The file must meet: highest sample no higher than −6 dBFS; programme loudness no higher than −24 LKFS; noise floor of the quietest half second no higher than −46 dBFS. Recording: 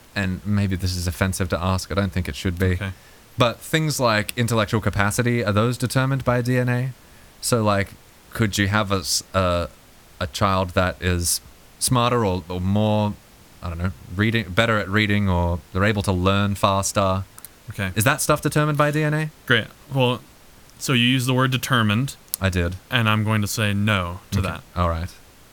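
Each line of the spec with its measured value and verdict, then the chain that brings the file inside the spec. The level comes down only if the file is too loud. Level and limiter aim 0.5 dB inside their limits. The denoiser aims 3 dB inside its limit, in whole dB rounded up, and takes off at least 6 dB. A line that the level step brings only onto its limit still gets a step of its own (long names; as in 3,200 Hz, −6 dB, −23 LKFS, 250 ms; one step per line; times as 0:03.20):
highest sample −2.0 dBFS: out of spec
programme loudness −21.5 LKFS: out of spec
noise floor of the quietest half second −48 dBFS: in spec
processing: level −3 dB
brickwall limiter −6.5 dBFS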